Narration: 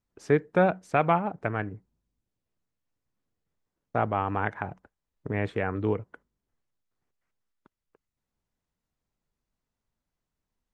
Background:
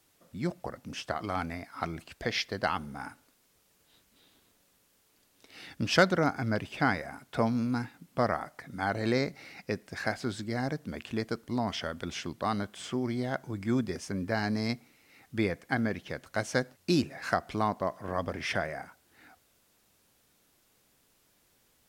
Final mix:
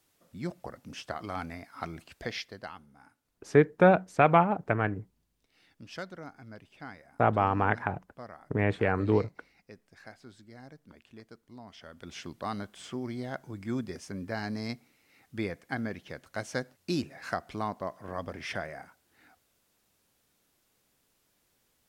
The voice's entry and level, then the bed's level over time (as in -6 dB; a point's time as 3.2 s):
3.25 s, +2.0 dB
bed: 2.26 s -3.5 dB
2.87 s -17.5 dB
11.71 s -17.5 dB
12.21 s -4.5 dB